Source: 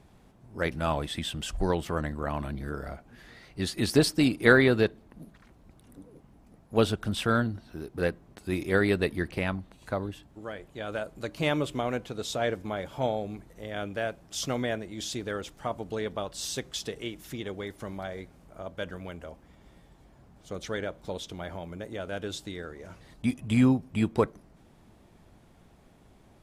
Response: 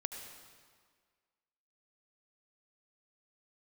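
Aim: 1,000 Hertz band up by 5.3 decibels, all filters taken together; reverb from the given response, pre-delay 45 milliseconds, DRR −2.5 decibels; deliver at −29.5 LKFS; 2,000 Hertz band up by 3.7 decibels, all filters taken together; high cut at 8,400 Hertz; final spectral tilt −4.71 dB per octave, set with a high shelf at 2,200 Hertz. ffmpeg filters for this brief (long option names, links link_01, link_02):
-filter_complex "[0:a]lowpass=8400,equalizer=frequency=1000:width_type=o:gain=7.5,equalizer=frequency=2000:width_type=o:gain=5.5,highshelf=frequency=2200:gain=-7.5,asplit=2[link_01][link_02];[1:a]atrim=start_sample=2205,adelay=45[link_03];[link_02][link_03]afir=irnorm=-1:irlink=0,volume=2.5dB[link_04];[link_01][link_04]amix=inputs=2:normalize=0,volume=-5dB"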